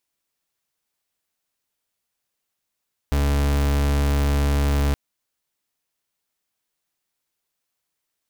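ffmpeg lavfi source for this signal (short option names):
-f lavfi -i "aevalsrc='0.106*(2*lt(mod(71.1*t,1),0.39)-1)':d=1.82:s=44100"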